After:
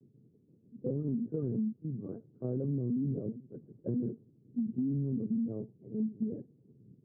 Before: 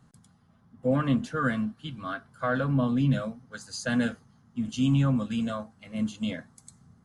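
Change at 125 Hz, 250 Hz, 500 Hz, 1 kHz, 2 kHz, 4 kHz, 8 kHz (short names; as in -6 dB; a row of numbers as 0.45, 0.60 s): -7.5 dB, -6.0 dB, -7.0 dB, under -30 dB, under -40 dB, under -40 dB, under -35 dB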